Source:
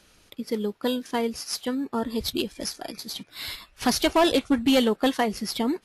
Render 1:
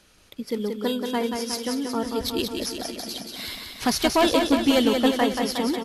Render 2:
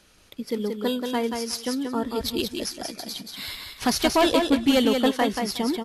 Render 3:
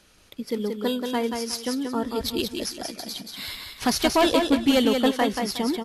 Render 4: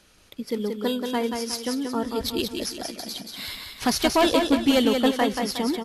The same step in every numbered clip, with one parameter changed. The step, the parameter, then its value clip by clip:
feedback delay, feedback: 62%, 16%, 26%, 40%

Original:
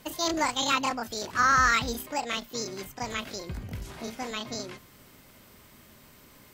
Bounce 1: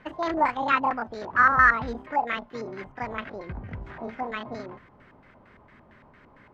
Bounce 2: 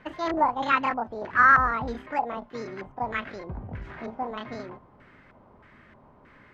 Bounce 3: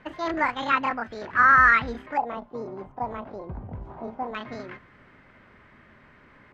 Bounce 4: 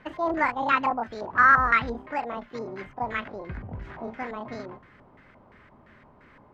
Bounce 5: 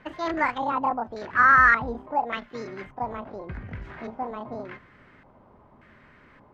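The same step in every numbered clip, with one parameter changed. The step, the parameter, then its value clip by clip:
LFO low-pass, rate: 4.4 Hz, 1.6 Hz, 0.23 Hz, 2.9 Hz, 0.86 Hz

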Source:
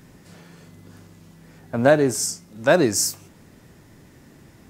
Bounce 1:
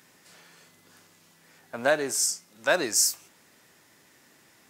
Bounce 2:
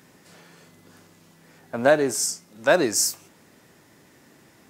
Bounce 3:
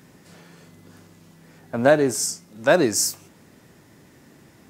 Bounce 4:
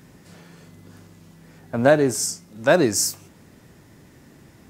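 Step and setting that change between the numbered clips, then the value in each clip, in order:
high-pass, cutoff frequency: 1.4 kHz, 420 Hz, 160 Hz, 40 Hz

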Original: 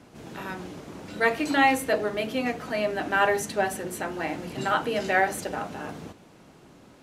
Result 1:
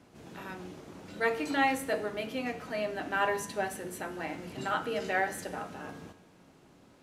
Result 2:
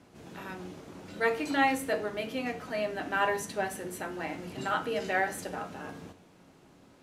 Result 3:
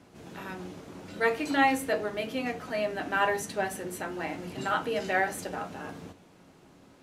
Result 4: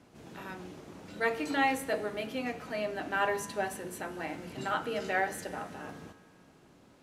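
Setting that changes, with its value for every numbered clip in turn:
feedback comb, decay: 0.9 s, 0.42 s, 0.18 s, 2 s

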